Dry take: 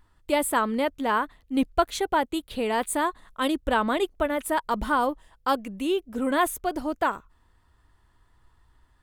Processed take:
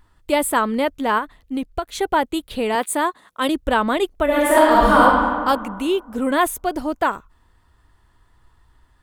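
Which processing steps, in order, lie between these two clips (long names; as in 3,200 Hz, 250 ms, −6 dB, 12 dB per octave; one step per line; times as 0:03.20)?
0:01.18–0:01.99: downward compressor 6 to 1, threshold −27 dBFS, peak gain reduction 11.5 dB
0:02.75–0:03.49: high-pass filter 210 Hz 12 dB per octave
0:04.24–0:05.01: thrown reverb, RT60 1.8 s, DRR −7 dB
level +5 dB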